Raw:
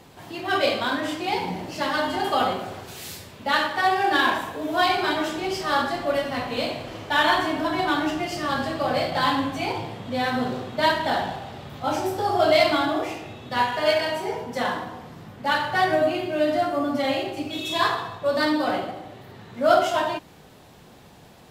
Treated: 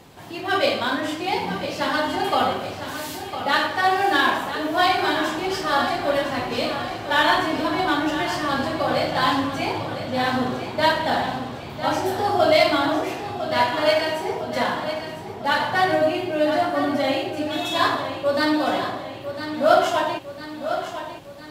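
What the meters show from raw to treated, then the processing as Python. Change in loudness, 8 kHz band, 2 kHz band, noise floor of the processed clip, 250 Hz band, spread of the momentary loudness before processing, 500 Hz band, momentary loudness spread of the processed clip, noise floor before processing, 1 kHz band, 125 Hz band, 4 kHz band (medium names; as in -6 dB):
+1.5 dB, +2.0 dB, +2.0 dB, -35 dBFS, +2.0 dB, 13 LU, +2.0 dB, 11 LU, -49 dBFS, +2.0 dB, +2.0 dB, +2.0 dB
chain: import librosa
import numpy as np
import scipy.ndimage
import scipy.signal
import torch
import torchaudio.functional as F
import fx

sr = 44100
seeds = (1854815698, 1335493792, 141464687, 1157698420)

y = fx.echo_feedback(x, sr, ms=1004, feedback_pct=54, wet_db=-10.0)
y = F.gain(torch.from_numpy(y), 1.5).numpy()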